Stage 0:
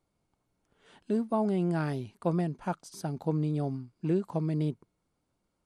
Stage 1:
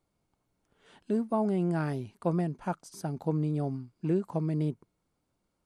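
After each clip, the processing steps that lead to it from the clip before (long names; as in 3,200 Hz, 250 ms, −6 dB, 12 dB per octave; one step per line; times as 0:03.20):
dynamic equaliser 3,700 Hz, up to −5 dB, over −59 dBFS, Q 1.6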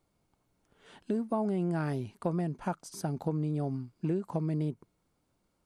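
downward compressor 3 to 1, threshold −32 dBFS, peak gain reduction 7.5 dB
level +3 dB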